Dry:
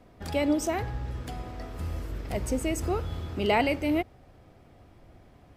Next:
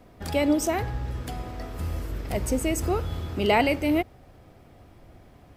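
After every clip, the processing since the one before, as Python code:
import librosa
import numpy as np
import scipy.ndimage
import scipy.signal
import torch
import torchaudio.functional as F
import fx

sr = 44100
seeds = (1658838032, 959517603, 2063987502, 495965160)

y = fx.high_shelf(x, sr, hz=12000.0, db=8.0)
y = y * librosa.db_to_amplitude(3.0)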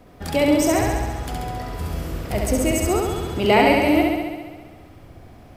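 y = fx.room_flutter(x, sr, wall_m=11.6, rt60_s=1.4)
y = y * librosa.db_to_amplitude(3.5)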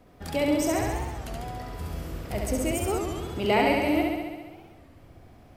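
y = fx.record_warp(x, sr, rpm=33.33, depth_cents=160.0)
y = y * librosa.db_to_amplitude(-7.0)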